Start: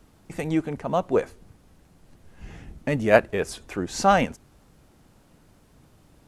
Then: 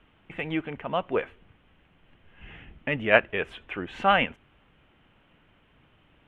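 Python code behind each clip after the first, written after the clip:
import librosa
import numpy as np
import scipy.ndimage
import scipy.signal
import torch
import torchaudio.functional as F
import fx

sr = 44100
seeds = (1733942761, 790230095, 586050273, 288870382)

y = fx.curve_eq(x, sr, hz=(190.0, 750.0, 3100.0, 4700.0), db=(0, 3, 14, -20))
y = y * librosa.db_to_amplitude(-7.0)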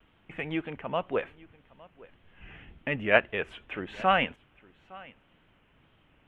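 y = fx.vibrato(x, sr, rate_hz=1.9, depth_cents=67.0)
y = y + 10.0 ** (-22.5 / 20.0) * np.pad(y, (int(861 * sr / 1000.0), 0))[:len(y)]
y = y * librosa.db_to_amplitude(-2.5)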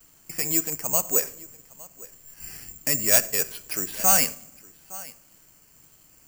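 y = 10.0 ** (-19.0 / 20.0) * np.tanh(x / 10.0 ** (-19.0 / 20.0))
y = fx.room_shoebox(y, sr, seeds[0], volume_m3=2200.0, walls='furnished', distance_m=0.53)
y = (np.kron(y[::6], np.eye(6)[0]) * 6)[:len(y)]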